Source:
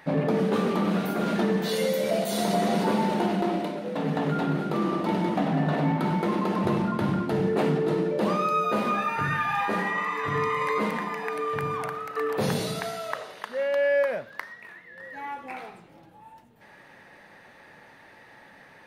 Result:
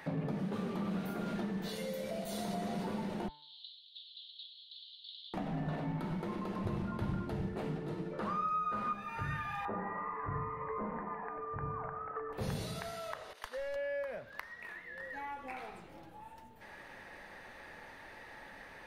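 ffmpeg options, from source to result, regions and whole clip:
-filter_complex "[0:a]asettb=1/sr,asplit=3[a][b][c];[a]atrim=end=3.284[d];[b]atrim=start=3.28:end=5.34,asetpts=PTS-STARTPTS,afade=t=in:d=0.004:c=qsin,afade=t=out:st=2.056:d=0.004:c=qsin,asuperpass=centerf=3700:order=8:qfactor=3,acontrast=70,aderivative[e];[c]atrim=start=5.336[f];[d][e]acrossfade=d=0.004:c1=hsin:c2=qsin[g];[g][f]acrossfade=d=0.004:c1=qsin:c2=hsin,asettb=1/sr,asplit=3[h][i][j];[h]atrim=end=8.134[k];[i]atrim=start=8.13:end=8.93,asetpts=PTS-STARTPTS,afade=t=in:d=0.004:c=qsin,afade=t=out:st=0.796:d=0.004:c=qsin,lowpass=11k,equalizer=f=1.3k:t=o:w=0.82:g=14.5[l];[j]atrim=start=8.926[m];[k][l]acrossfade=d=0.004:c1=hsin:c2=qsin[n];[n][m]acrossfade=d=0.004:c1=qsin:c2=hsin,asettb=1/sr,asplit=3[o][p][q];[o]atrim=end=9.654[r];[p]atrim=start=9.65:end=12.33,asetpts=PTS-STARTPTS,afade=t=in:d=0.004:c=qsin,afade=t=out:st=2.676:d=0.004:c=qsin,lowpass=f=1.6k:w=0.5412,lowpass=f=1.6k:w=1.3066,equalizer=f=680:w=0.41:g=6[s];[q]atrim=start=12.326[t];[r][s]acrossfade=d=0.004:c1=hsin:c2=qsin[u];[u][t]acrossfade=d=0.004:c1=qsin:c2=hsin,asettb=1/sr,asplit=3[v][w][x];[v]atrim=end=13.334[y];[w]atrim=start=13.33:end=13.76,asetpts=PTS-STARTPTS,afade=t=in:d=0.004:c=qsin,afade=t=out:st=0.426:d=0.004:c=qsin,agate=range=-33dB:threshold=-39dB:ratio=3:release=100:detection=peak,bass=f=250:g=-13,treble=f=4k:g=6,asoftclip=type=hard:threshold=-24.5dB[z];[x]atrim=start=13.756[aa];[y][z]acrossfade=d=0.004:c1=hsin:c2=qsin[ab];[ab][aa]acrossfade=d=0.004:c1=qsin:c2=hsin,acrossover=split=130[ac][ad];[ad]acompressor=threshold=-42dB:ratio=3[ae];[ac][ae]amix=inputs=2:normalize=0,asubboost=boost=5.5:cutoff=55,bandreject=f=147.9:t=h:w=4,bandreject=f=295.8:t=h:w=4,bandreject=f=443.7:t=h:w=4,bandreject=f=591.6:t=h:w=4,bandreject=f=739.5:t=h:w=4,bandreject=f=887.4:t=h:w=4,bandreject=f=1.0353k:t=h:w=4,bandreject=f=1.1832k:t=h:w=4,bandreject=f=1.3311k:t=h:w=4,bandreject=f=1.479k:t=h:w=4,bandreject=f=1.6269k:t=h:w=4,bandreject=f=1.7748k:t=h:w=4,bandreject=f=1.9227k:t=h:w=4,bandreject=f=2.0706k:t=h:w=4,bandreject=f=2.2185k:t=h:w=4,bandreject=f=2.3664k:t=h:w=4,bandreject=f=2.5143k:t=h:w=4,bandreject=f=2.6622k:t=h:w=4,bandreject=f=2.8101k:t=h:w=4,bandreject=f=2.958k:t=h:w=4,bandreject=f=3.1059k:t=h:w=4,bandreject=f=3.2538k:t=h:w=4,bandreject=f=3.4017k:t=h:w=4,bandreject=f=3.5496k:t=h:w=4,bandreject=f=3.6975k:t=h:w=4,bandreject=f=3.8454k:t=h:w=4,bandreject=f=3.9933k:t=h:w=4"

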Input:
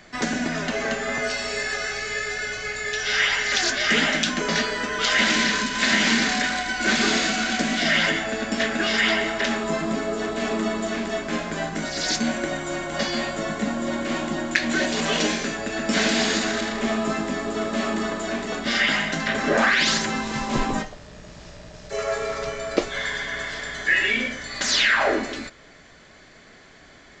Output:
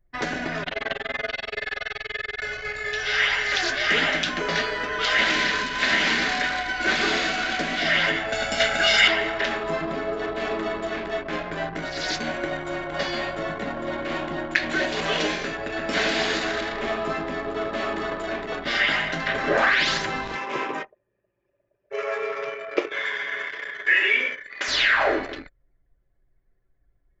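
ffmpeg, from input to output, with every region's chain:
-filter_complex "[0:a]asettb=1/sr,asplit=3[a][b][c];[a]atrim=end=0.634[d];[b]atrim=start=0.63:end=2.42,asetpts=PTS-STARTPTS,afade=t=in:d=0.004:c=qsin,afade=t=out:st=1.786:d=0.004:c=qsin,acrossover=split=3200[e][f];[f]acompressor=threshold=-44dB:ratio=4:attack=1:release=60[g];[e][g]amix=inputs=2:normalize=0,tremolo=f=21:d=0.824,equalizer=f=3.5k:w=1.6:g=11.5[h];[c]atrim=start=2.416[i];[d][h]acrossfade=d=0.004:c1=hsin:c2=qsin[j];[j][i]acrossfade=d=0.004:c1=qsin:c2=hsin,asettb=1/sr,asplit=3[k][l][m];[k]atrim=end=8.324[n];[l]atrim=start=8.32:end=9.08,asetpts=PTS-STARTPTS,afade=t=in:d=0.004:c=qsin,afade=t=out:st=0.756:d=0.004:c=qsin,aemphasis=mode=production:type=75kf,aecho=1:1:1.4:0.64,atrim=end_sample=33516[o];[m]atrim=start=9.076[p];[n][o]acrossfade=d=0.004:c1=hsin:c2=qsin[q];[q][p]acrossfade=d=0.004:c1=qsin:c2=hsin,asettb=1/sr,asplit=3[r][s][t];[r]atrim=end=20.354[u];[s]atrim=start=20.35:end=24.68,asetpts=PTS-STARTPTS,afade=t=in:d=0.004:c=qsin,afade=t=out:st=4.326:d=0.004:c=qsin,highpass=340,equalizer=f=390:t=q:w=4:g=4,equalizer=f=710:t=q:w=4:g=-7,equalizer=f=2.4k:t=q:w=4:g=5,equalizer=f=4.2k:t=q:w=4:g=-9,lowpass=f=7.7k:w=0.5412,lowpass=f=7.7k:w=1.3066,aecho=1:1:68|136|204|272:0.2|0.0738|0.0273|0.0101,atrim=end_sample=190953[v];[t]atrim=start=24.676[w];[u][v]acrossfade=d=0.004:c1=hsin:c2=qsin[x];[x][w]acrossfade=d=0.004:c1=qsin:c2=hsin,anlmdn=25.1,lowpass=4.1k,equalizer=f=220:t=o:w=0.38:g=-13.5"

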